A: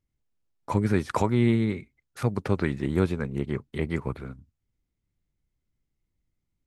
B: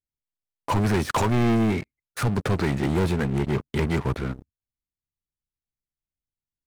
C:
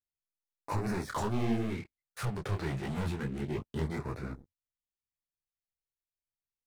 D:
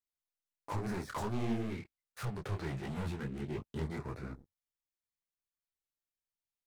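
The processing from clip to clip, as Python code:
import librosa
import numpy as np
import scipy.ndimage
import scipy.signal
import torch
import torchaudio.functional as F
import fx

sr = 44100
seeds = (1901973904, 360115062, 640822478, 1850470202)

y1 = fx.leveller(x, sr, passes=5)
y1 = y1 * 10.0 ** (-8.0 / 20.0)
y2 = fx.filter_lfo_notch(y1, sr, shape='sine', hz=0.3, low_hz=220.0, high_hz=3200.0, q=2.2)
y2 = fx.detune_double(y2, sr, cents=48)
y2 = y2 * 10.0 ** (-6.5 / 20.0)
y3 = fx.self_delay(y2, sr, depth_ms=0.1)
y3 = y3 * 10.0 ** (-4.0 / 20.0)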